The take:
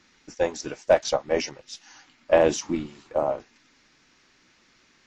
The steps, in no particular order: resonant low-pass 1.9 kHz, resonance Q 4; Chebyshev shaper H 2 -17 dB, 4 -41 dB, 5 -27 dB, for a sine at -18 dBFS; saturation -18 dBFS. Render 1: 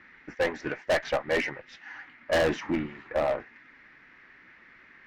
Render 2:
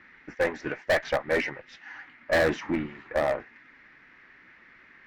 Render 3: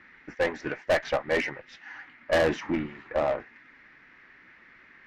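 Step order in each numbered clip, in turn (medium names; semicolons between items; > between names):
resonant low-pass > Chebyshev shaper > saturation; saturation > resonant low-pass > Chebyshev shaper; resonant low-pass > saturation > Chebyshev shaper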